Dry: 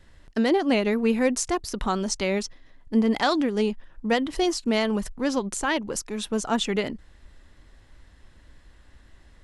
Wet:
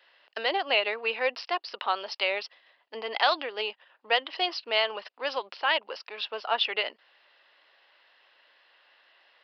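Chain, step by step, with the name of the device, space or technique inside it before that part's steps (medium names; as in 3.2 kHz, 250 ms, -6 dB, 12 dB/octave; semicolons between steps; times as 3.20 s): musical greeting card (resampled via 11.025 kHz; high-pass 560 Hz 24 dB/octave; peaking EQ 2.8 kHz +9 dB 0.33 oct)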